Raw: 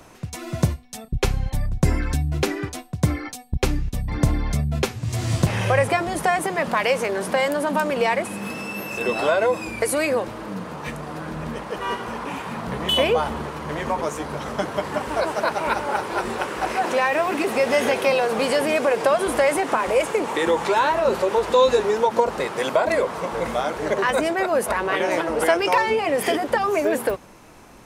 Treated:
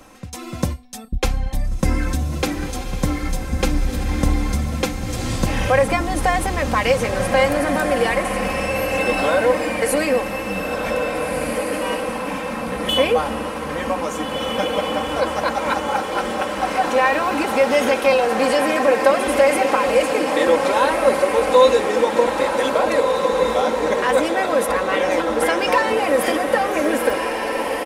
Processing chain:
comb filter 3.8 ms, depth 61%
on a send: feedback delay with all-pass diffusion 1,711 ms, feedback 44%, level −4 dB

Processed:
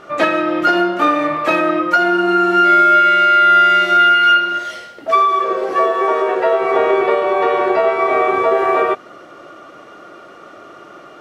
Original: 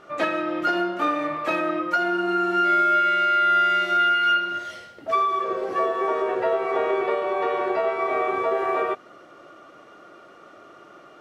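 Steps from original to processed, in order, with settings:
0:04.25–0:06.60: parametric band 91 Hz −7 dB → −14.5 dB 2 octaves
level +9 dB

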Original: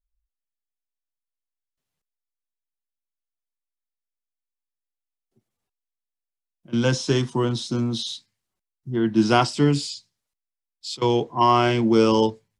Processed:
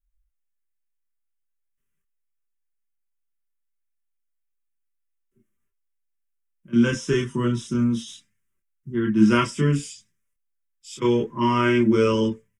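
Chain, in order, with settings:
phaser with its sweep stopped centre 1,800 Hz, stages 4
multi-voice chorus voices 6, 0.38 Hz, delay 27 ms, depth 2.3 ms
comb filter 5.1 ms, depth 38%
level +5 dB

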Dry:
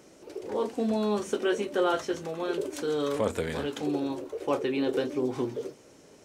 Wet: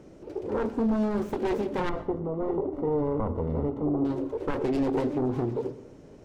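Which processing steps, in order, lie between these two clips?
phase distortion by the signal itself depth 0.8 ms
spectral tilt −3.5 dB per octave
brickwall limiter −19 dBFS, peak gain reduction 8 dB
0:01.89–0:04.05: Savitzky-Golay smoothing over 65 samples
dense smooth reverb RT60 0.63 s, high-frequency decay 0.55×, pre-delay 85 ms, DRR 15.5 dB

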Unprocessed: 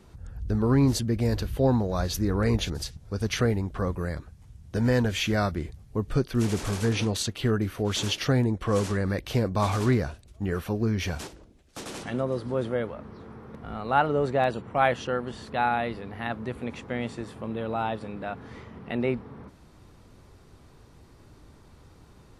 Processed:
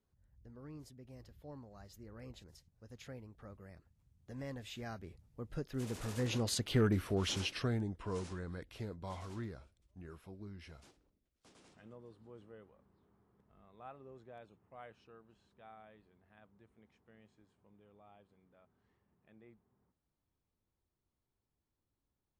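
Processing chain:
source passing by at 0:06.84, 33 m/s, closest 11 metres
soft clipping −16.5 dBFS, distortion −22 dB
level −3.5 dB

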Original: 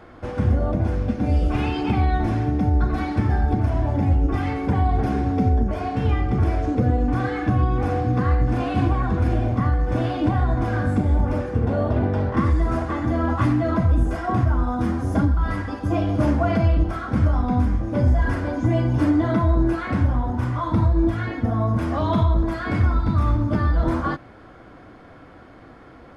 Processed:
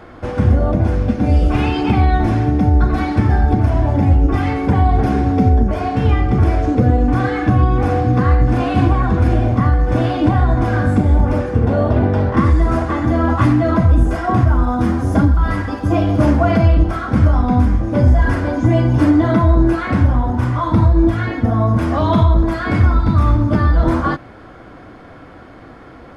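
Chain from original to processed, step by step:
0:14.49–0:16.62: surface crackle 190 per second −50 dBFS
level +6.5 dB

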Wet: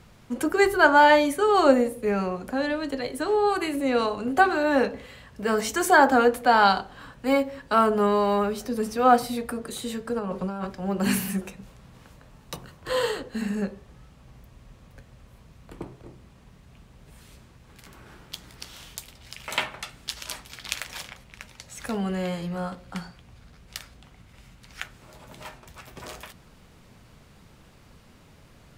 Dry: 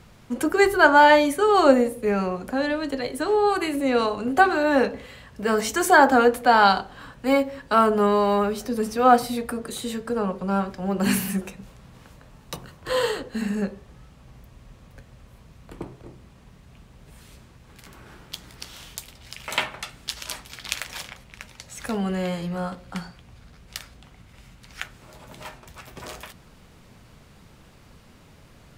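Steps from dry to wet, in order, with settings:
0:10.19–0:10.67: compressor whose output falls as the input rises −28 dBFS, ratio −1
level −2 dB

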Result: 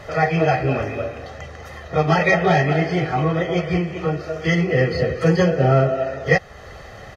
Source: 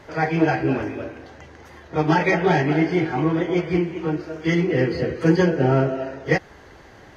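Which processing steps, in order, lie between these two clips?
comb filter 1.6 ms, depth 68%
in parallel at 0 dB: downward compressor, threshold −30 dBFS, peak gain reduction 17 dB

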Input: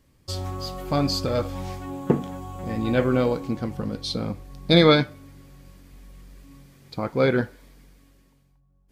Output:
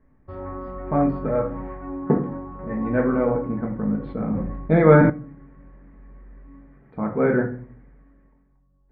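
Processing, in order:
elliptic low-pass filter 1,900 Hz, stop band 80 dB
rectangular room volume 310 cubic metres, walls furnished, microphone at 1.5 metres
0:04.00–0:05.10: level that may fall only so fast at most 37 dB per second
level −1 dB

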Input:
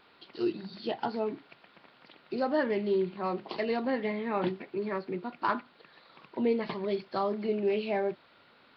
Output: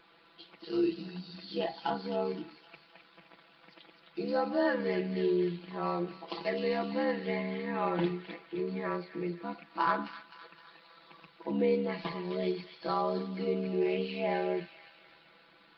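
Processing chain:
delay with a high-pass on its return 144 ms, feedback 52%, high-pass 2,500 Hz, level −5 dB
time stretch by overlap-add 1.8×, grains 27 ms

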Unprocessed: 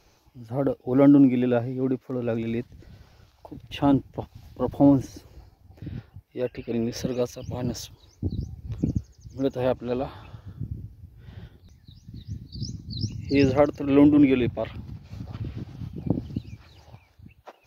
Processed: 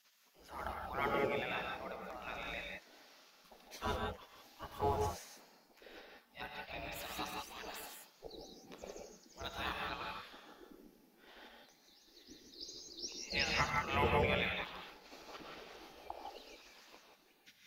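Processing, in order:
gate on every frequency bin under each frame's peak −20 dB weak
0:03.61–0:04.76: notch comb filter 180 Hz
reverb whose tail is shaped and stops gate 200 ms rising, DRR 1 dB
level −1 dB

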